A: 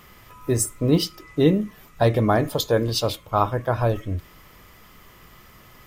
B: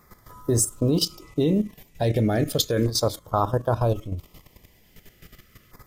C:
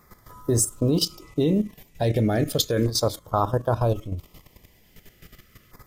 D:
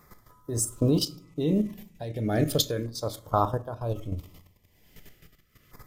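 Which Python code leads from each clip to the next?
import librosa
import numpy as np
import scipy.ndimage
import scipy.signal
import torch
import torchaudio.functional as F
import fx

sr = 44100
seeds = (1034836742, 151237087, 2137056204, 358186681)

y1 = fx.dynamic_eq(x, sr, hz=7000.0, q=0.99, threshold_db=-43.0, ratio=4.0, max_db=4)
y1 = fx.level_steps(y1, sr, step_db=12)
y1 = fx.filter_lfo_notch(y1, sr, shape='saw_down', hz=0.35, low_hz=820.0, high_hz=3000.0, q=0.84)
y1 = y1 * 10.0 ** (4.5 / 20.0)
y2 = y1
y3 = y2 * (1.0 - 0.78 / 2.0 + 0.78 / 2.0 * np.cos(2.0 * np.pi * 1.2 * (np.arange(len(y2)) / sr)))
y3 = fx.room_shoebox(y3, sr, seeds[0], volume_m3=540.0, walls='furnished', distance_m=0.38)
y3 = y3 * 10.0 ** (-1.0 / 20.0)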